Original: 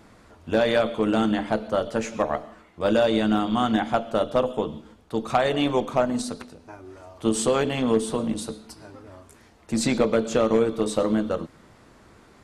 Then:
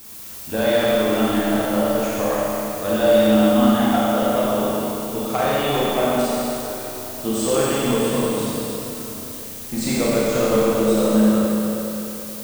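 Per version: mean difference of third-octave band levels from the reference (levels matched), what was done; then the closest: 11.5 dB: added noise blue -39 dBFS; Schroeder reverb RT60 3.3 s, combs from 29 ms, DRR -7.5 dB; gain -4 dB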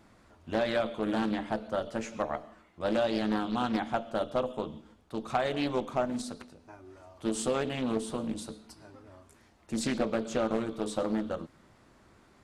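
1.0 dB: notch 460 Hz, Q 13; Doppler distortion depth 0.37 ms; gain -7.5 dB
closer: second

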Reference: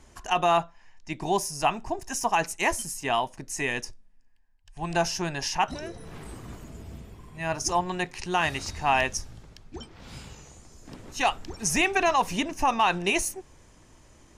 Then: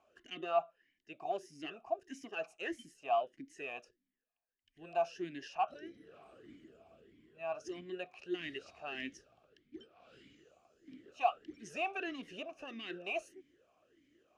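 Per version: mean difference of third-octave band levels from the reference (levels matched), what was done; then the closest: 9.0 dB: in parallel at -10.5 dB: wavefolder -21 dBFS; on the sum: vowel sweep a-i 1.6 Hz; gain -3.5 dB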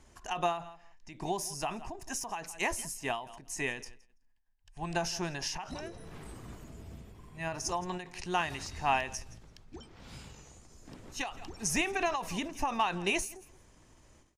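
3.0 dB: on a send: feedback echo 0.166 s, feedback 16%, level -21.5 dB; on the sum: ending taper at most 110 dB/s; gain -5 dB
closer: second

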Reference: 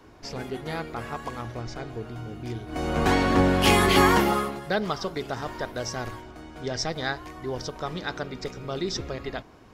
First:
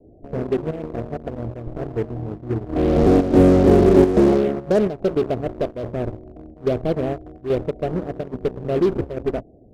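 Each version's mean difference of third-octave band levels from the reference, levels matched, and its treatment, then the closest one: 9.0 dB: steep low-pass 700 Hz 72 dB/oct; dynamic EQ 370 Hz, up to +5 dB, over -36 dBFS, Q 1.3; in parallel at -11.5 dB: fuzz box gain 29 dB, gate -37 dBFS; on the sum: chopper 1.2 Hz, depth 60%, duty 85%; gain +3.5 dB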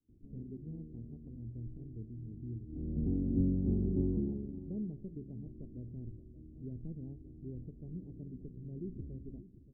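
18.5 dB: Wiener smoothing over 25 samples; gate with hold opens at -44 dBFS; inverse Chebyshev low-pass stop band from 1300 Hz, stop band 70 dB; echo 0.576 s -15.5 dB; gain -6.5 dB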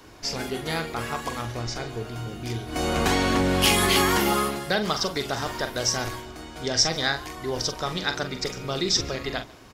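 5.5 dB: compressor 4:1, threshold -23 dBFS, peak gain reduction 8.5 dB; high shelf 2500 Hz +11 dB; doubler 43 ms -9 dB; echo 0.143 s -23.5 dB; gain +1.5 dB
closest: third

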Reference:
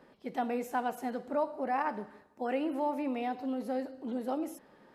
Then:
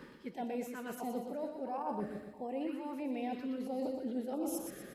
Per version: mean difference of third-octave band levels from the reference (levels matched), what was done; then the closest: 6.5 dB: reverse; compressor 12:1, threshold -45 dBFS, peak gain reduction 19 dB; reverse; feedback echo 0.121 s, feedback 47%, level -6 dB; spectral gain 1.78–2.61, 1200–7200 Hz -6 dB; stepped notch 3 Hz 700–1900 Hz; gain +10.5 dB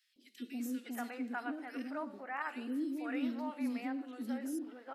8.5 dB: wow and flutter 68 cents; brick-wall FIR high-pass 220 Hz; band shelf 640 Hz -11.5 dB; three bands offset in time highs, lows, mids 0.16/0.6 s, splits 440/2700 Hz; gain +1 dB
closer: first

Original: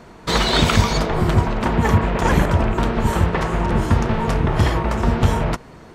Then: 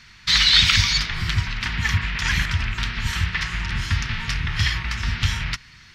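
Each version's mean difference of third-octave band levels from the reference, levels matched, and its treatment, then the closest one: 9.5 dB: EQ curve 110 Hz 0 dB, 550 Hz -26 dB, 1900 Hz +10 dB, 3700 Hz +12 dB, 5300 Hz +14 dB, 8000 Hz 0 dB; gain -5 dB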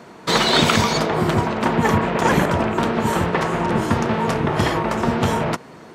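2.0 dB: HPF 160 Hz 12 dB/oct; gain +2 dB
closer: second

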